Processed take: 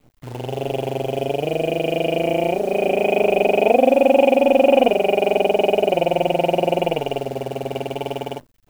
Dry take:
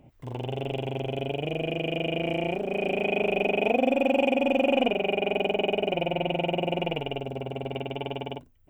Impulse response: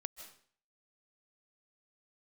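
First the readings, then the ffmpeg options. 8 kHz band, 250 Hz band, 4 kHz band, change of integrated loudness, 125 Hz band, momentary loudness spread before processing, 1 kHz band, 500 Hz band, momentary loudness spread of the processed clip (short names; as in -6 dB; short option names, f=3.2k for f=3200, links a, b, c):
n/a, +5.5 dB, +3.5 dB, +8.5 dB, +4.0 dB, 10 LU, +10.0 dB, +10.0 dB, 13 LU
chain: -af "adynamicequalizer=threshold=0.0141:dfrequency=600:dqfactor=0.81:tfrequency=600:tqfactor=0.81:attack=5:release=100:ratio=0.375:range=4:mode=boostabove:tftype=bell,acrusher=bits=8:dc=4:mix=0:aa=0.000001,volume=3dB"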